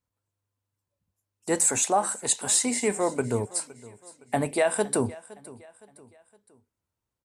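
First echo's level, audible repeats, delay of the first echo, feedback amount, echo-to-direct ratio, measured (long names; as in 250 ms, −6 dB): −20.0 dB, 3, 514 ms, 43%, −19.0 dB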